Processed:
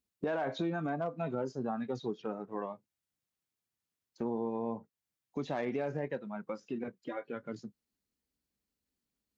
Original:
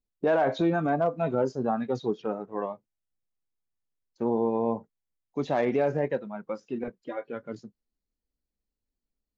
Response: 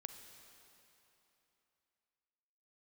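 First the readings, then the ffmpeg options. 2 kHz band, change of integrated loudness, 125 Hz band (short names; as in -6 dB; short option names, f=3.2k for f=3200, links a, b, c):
-7.0 dB, -8.5 dB, -7.0 dB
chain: -af "highpass=93,equalizer=f=580:t=o:w=1.6:g=-4,acompressor=threshold=-45dB:ratio=2,volume=4.5dB"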